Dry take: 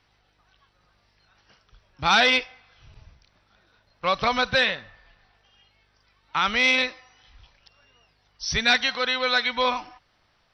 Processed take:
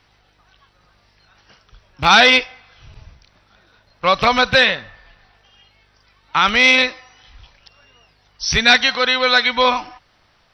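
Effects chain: rattle on loud lows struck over -32 dBFS, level -19 dBFS; trim +8 dB

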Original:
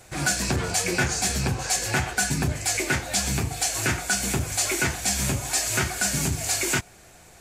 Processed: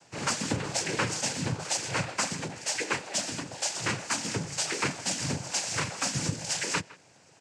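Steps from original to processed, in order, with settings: 2.28–3.69 s: high-pass 210 Hz 12 dB/octave; in parallel at -11 dB: bit crusher 4-bit; on the sum: noise-vocoded speech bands 8; speakerphone echo 160 ms, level -19 dB; trim -6.5 dB

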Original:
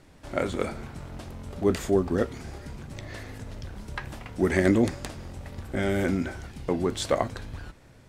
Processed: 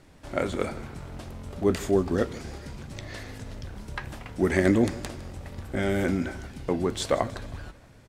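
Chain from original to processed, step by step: 1.93–3.52 s: peaking EQ 4.6 kHz +3.5 dB 1.6 oct; feedback delay 158 ms, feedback 50%, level -19.5 dB

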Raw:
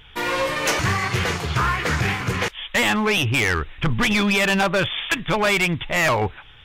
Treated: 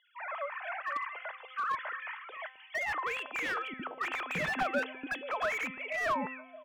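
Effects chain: formants replaced by sine waves; dynamic bell 1.2 kHz, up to +5 dB, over -31 dBFS, Q 0.84; feedback comb 260 Hz, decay 0.98 s, mix 70%; three bands offset in time mids, highs, lows 290/480 ms, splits 420/3000 Hz; slew-rate limiter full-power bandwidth 95 Hz; trim -5.5 dB

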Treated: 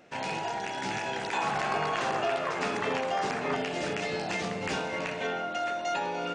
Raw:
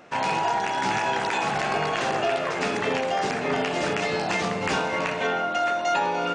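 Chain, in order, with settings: peaking EQ 1.1 kHz -7.5 dB 0.77 oct, from 1.33 s +4 dB, from 3.56 s -5 dB; trim -5.5 dB

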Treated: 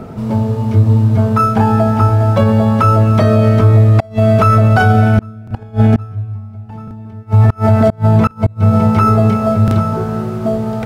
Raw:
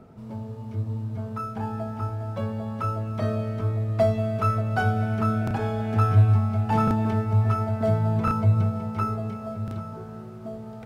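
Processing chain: 5.17–7.23 s: bass shelf 280 Hz +10.5 dB; inverted gate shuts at -12 dBFS, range -34 dB; loudness maximiser +21 dB; trim -1 dB

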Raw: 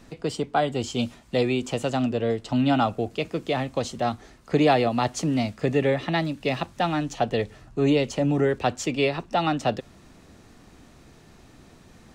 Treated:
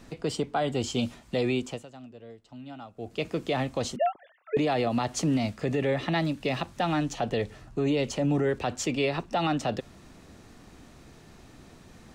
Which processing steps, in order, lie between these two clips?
1.49–3.31 s: dip -21.5 dB, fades 0.37 s; 3.96–4.57 s: formants replaced by sine waves; peak limiter -18 dBFS, peak gain reduction 9 dB

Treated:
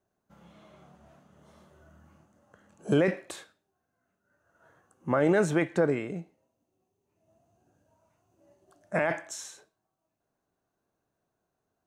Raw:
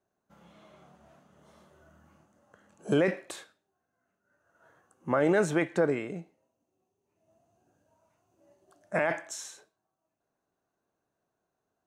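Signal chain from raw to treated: bass shelf 160 Hz +6.5 dB

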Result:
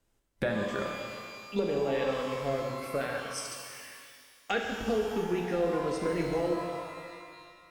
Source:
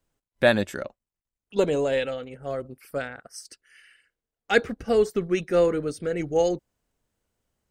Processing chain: low-pass that closes with the level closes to 2.4 kHz, closed at -17 dBFS; compression, threshold -31 dBFS, peak gain reduction 16.5 dB; pitch-shifted reverb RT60 2 s, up +12 st, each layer -8 dB, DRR 0.5 dB; trim +1.5 dB

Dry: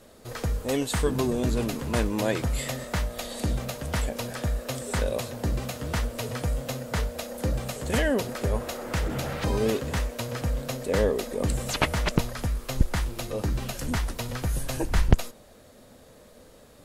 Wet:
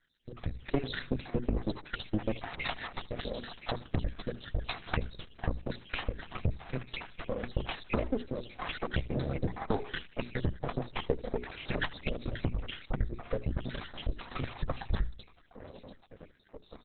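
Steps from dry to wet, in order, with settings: random holes in the spectrogram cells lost 72%; half-wave rectifier; rotary cabinet horn 1 Hz; distance through air 57 m; on a send: feedback delay 77 ms, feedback 33%, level -21 dB; on the sum: compression 4:1, threshold -40 dBFS, peak gain reduction 18 dB; integer overflow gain 26 dB; treble shelf 7.3 kHz +3.5 dB; hum notches 60/120/180/240/300/360/420 Hz; level rider gain up to 12 dB; trim +3 dB; Opus 8 kbps 48 kHz

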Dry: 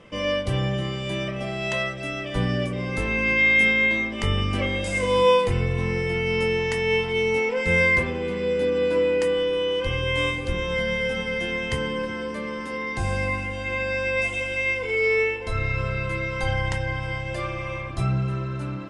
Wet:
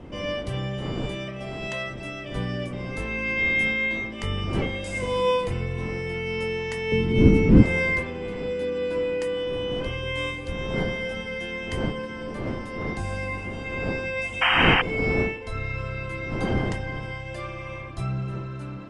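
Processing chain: wind noise 330 Hz -29 dBFS; 6.92–7.63 s: resonant low shelf 410 Hz +12 dB, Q 1.5; 14.41–14.82 s: painted sound noise 660–3200 Hz -15 dBFS; trim -5 dB

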